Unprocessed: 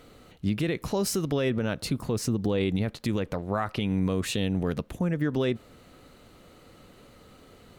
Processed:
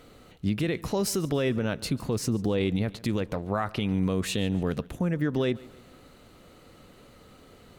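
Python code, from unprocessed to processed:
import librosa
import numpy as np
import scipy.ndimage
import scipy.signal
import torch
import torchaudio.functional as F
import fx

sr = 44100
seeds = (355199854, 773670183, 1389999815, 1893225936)

y = fx.echo_feedback(x, sr, ms=143, feedback_pct=44, wet_db=-21.5)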